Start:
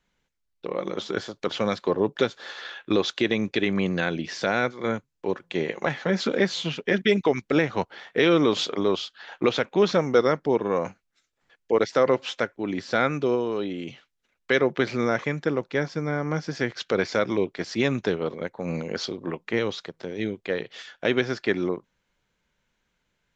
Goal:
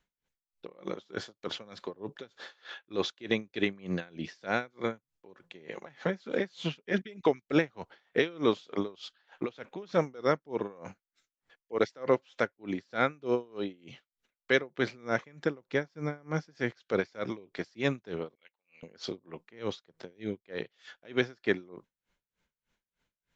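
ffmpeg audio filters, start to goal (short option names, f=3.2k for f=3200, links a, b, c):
-filter_complex "[0:a]asettb=1/sr,asplit=3[a][b][c];[a]atrim=end=18.354[d];[b]atrim=start=18.35:end=18.83,asetpts=PTS-STARTPTS,afade=t=in:d=0.004:c=qsin,afade=t=out:st=0.476:d=0.004:c=qsin,bandpass=f=2.8k:t=q:w=7.4:csg=0[e];[c]atrim=start=18.826[f];[d][e]acrossfade=d=0.004:c1=hsin:c2=qsin[g];[g][f]acrossfade=d=0.004:c1=qsin:c2=hsin,aeval=exprs='val(0)*pow(10,-27*(0.5-0.5*cos(2*PI*3.3*n/s))/20)':c=same,volume=-2.5dB"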